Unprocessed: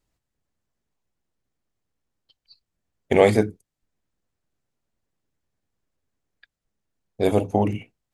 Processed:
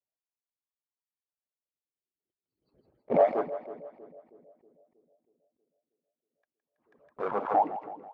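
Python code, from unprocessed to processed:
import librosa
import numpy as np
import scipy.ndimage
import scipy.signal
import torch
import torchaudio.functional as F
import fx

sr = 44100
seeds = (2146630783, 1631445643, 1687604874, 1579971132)

p1 = fx.hpss_only(x, sr, part='percussive')
p2 = scipy.signal.sosfilt(scipy.signal.butter(2, 2000.0, 'lowpass', fs=sr, output='sos'), p1)
p3 = fx.low_shelf(p2, sr, hz=250.0, db=8.5)
p4 = fx.leveller(p3, sr, passes=3)
p5 = fx.wah_lfo(p4, sr, hz=0.32, low_hz=350.0, high_hz=1100.0, q=2.7)
p6 = p5 + fx.echo_split(p5, sr, split_hz=500.0, low_ms=319, high_ms=163, feedback_pct=52, wet_db=-13.0, dry=0)
p7 = fx.pre_swell(p6, sr, db_per_s=110.0)
y = p7 * 10.0 ** (-7.0 / 20.0)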